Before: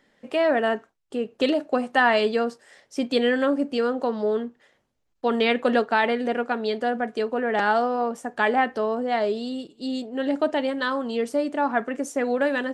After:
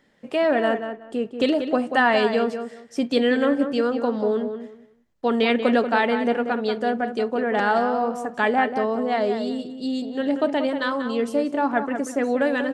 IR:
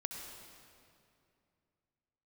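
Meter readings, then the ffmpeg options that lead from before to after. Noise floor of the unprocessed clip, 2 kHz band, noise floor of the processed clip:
-71 dBFS, +0.5 dB, -51 dBFS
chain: -filter_complex "[0:a]equalizer=f=110:w=0.53:g=5,asplit=2[a][b];[b]adelay=186,lowpass=f=2.7k:p=1,volume=-8dB,asplit=2[c][d];[d]adelay=186,lowpass=f=2.7k:p=1,volume=0.22,asplit=2[e][f];[f]adelay=186,lowpass=f=2.7k:p=1,volume=0.22[g];[a][c][e][g]amix=inputs=4:normalize=0"

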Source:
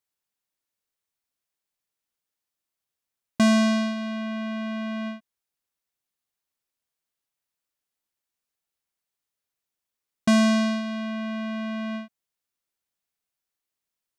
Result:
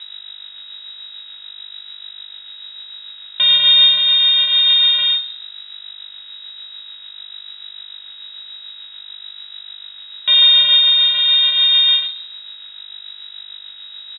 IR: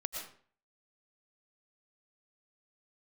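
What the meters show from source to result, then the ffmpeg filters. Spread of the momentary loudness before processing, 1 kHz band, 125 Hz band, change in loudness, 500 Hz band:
14 LU, -4.0 dB, under -10 dB, +15.0 dB, under -10 dB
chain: -filter_complex "[0:a]equalizer=f=390:w=3.1:g=12,acontrast=66,alimiter=limit=-14.5dB:level=0:latency=1,dynaudnorm=f=120:g=7:m=11.5dB,aeval=exprs='val(0)+0.0501*(sin(2*PI*50*n/s)+sin(2*PI*2*50*n/s)/2+sin(2*PI*3*50*n/s)/3+sin(2*PI*4*50*n/s)/4+sin(2*PI*5*50*n/s)/5)':c=same,aresample=11025,acrusher=bits=5:mix=0:aa=0.000001,aresample=44100,flanger=delay=5.1:depth=8.6:regen=-50:speed=0.53:shape=triangular,tremolo=f=6.8:d=0.3,asoftclip=type=tanh:threshold=-8dB,asplit=2[a][b];[b]adelay=32,volume=-11dB[c];[a][c]amix=inputs=2:normalize=0,aecho=1:1:68|136|204|272|340|408:0.178|0.101|0.0578|0.0329|0.0188|0.0107,lowpass=f=3.3k:t=q:w=0.5098,lowpass=f=3.3k:t=q:w=0.6013,lowpass=f=3.3k:t=q:w=0.9,lowpass=f=3.3k:t=q:w=2.563,afreqshift=-3900"

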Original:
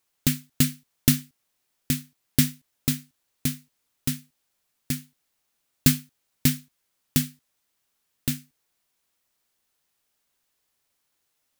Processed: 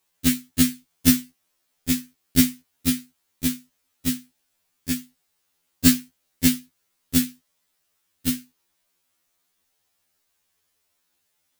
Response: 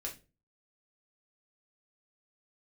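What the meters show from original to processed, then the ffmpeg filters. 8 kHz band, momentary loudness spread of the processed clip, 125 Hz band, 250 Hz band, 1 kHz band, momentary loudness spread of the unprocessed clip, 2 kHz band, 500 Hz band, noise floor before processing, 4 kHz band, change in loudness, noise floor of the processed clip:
+3.0 dB, 12 LU, -3.5 dB, +5.5 dB, +3.0 dB, 10 LU, +2.5 dB, +2.5 dB, -76 dBFS, +3.0 dB, +3.0 dB, -73 dBFS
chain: -af "afftfilt=real='re*2*eq(mod(b,4),0)':imag='im*2*eq(mod(b,4),0)':win_size=2048:overlap=0.75,volume=5dB"

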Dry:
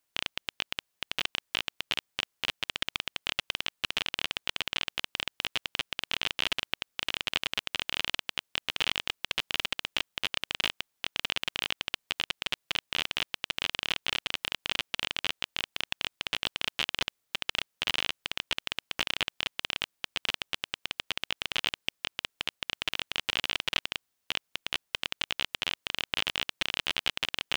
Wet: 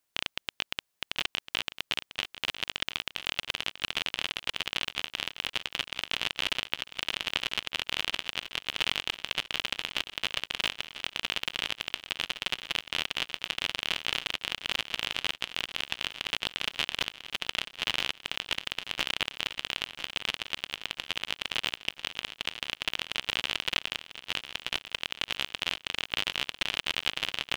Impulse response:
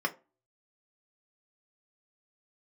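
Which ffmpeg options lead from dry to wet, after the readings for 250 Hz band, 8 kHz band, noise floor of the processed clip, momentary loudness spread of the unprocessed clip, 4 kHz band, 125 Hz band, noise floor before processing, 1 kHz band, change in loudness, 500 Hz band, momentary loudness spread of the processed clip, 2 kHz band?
+0.5 dB, +0.5 dB, -79 dBFS, 5 LU, +0.5 dB, +0.5 dB, -80 dBFS, +0.5 dB, +0.5 dB, +0.5 dB, 5 LU, +0.5 dB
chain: -af "aecho=1:1:996|1992|2988|3984|4980|5976:0.251|0.141|0.0788|0.0441|0.0247|0.0138"

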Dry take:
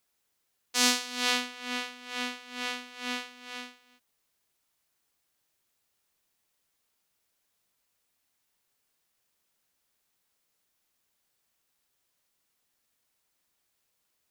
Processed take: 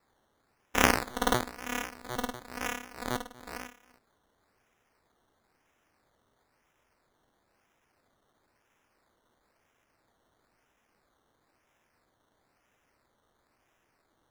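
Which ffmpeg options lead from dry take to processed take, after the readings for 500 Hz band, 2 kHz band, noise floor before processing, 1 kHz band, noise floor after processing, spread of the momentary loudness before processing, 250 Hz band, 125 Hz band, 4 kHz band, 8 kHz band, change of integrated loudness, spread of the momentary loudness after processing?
+7.0 dB, 0.0 dB, -78 dBFS, +5.0 dB, -74 dBFS, 17 LU, +2.5 dB, n/a, -8.0 dB, -4.5 dB, -1.0 dB, 18 LU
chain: -af "highshelf=f=8.5k:g=8,acrusher=samples=14:mix=1:aa=0.000001:lfo=1:lforange=8.4:lforate=1,equalizer=f=170:t=o:w=0.25:g=-5.5,volume=-1dB"

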